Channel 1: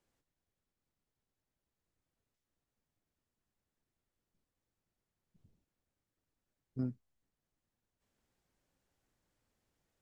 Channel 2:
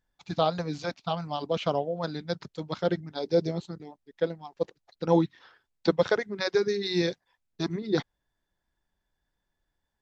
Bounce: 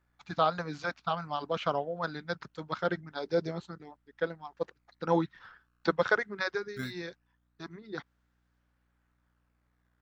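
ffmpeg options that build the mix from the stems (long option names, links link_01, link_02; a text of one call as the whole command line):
ffmpeg -i stem1.wav -i stem2.wav -filter_complex "[0:a]aeval=exprs='val(0)+0.000316*(sin(2*PI*60*n/s)+sin(2*PI*2*60*n/s)/2+sin(2*PI*3*60*n/s)/3+sin(2*PI*4*60*n/s)/4+sin(2*PI*5*60*n/s)/5)':channel_layout=same,acrusher=samples=18:mix=1:aa=0.000001:lfo=1:lforange=28.8:lforate=0.21,volume=-3.5dB[link_01];[1:a]volume=-6.5dB,afade=type=out:start_time=6.35:duration=0.31:silence=0.354813[link_02];[link_01][link_02]amix=inputs=2:normalize=0,equalizer=frequency=1400:width_type=o:width=1.2:gain=12.5" out.wav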